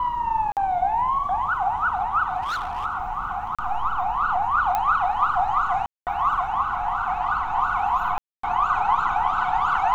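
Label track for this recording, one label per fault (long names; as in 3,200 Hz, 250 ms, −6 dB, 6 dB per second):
0.520000	0.570000	drop-out 48 ms
2.420000	2.860000	clipping −24 dBFS
3.550000	3.590000	drop-out 36 ms
4.750000	4.750000	click −11 dBFS
5.860000	6.070000	drop-out 208 ms
8.180000	8.430000	drop-out 254 ms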